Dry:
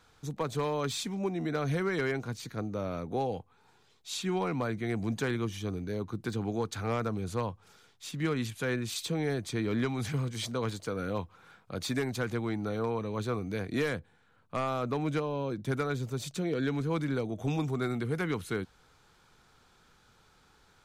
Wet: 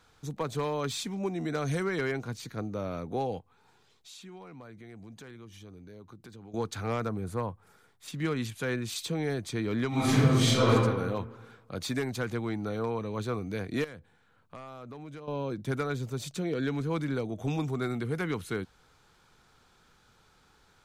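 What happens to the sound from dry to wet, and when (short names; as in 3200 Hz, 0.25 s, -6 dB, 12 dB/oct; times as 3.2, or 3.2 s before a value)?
1.23–1.83 bell 7600 Hz +4 dB -> +12.5 dB
3.39–6.54 compressor 3:1, threshold -50 dBFS
7.09–8.08 band shelf 4200 Hz -8.5 dB
9.88–10.7 reverb throw, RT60 1.3 s, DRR -11 dB
13.84–15.28 compressor 3:1, threshold -45 dBFS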